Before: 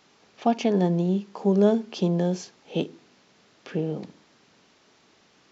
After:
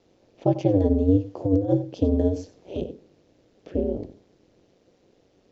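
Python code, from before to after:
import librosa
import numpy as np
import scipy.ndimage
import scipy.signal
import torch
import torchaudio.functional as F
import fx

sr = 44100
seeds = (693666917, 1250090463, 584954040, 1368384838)

p1 = fx.over_compress(x, sr, threshold_db=-22.0, ratio=-0.5, at=(1.08, 1.73))
p2 = p1 + fx.echo_single(p1, sr, ms=92, db=-15.5, dry=0)
p3 = p2 * np.sin(2.0 * np.pi * 95.0 * np.arange(len(p2)) / sr)
p4 = fx.low_shelf_res(p3, sr, hz=760.0, db=11.5, q=1.5)
p5 = fx.band_squash(p4, sr, depth_pct=70, at=(2.36, 2.82))
y = p5 * 10.0 ** (-7.5 / 20.0)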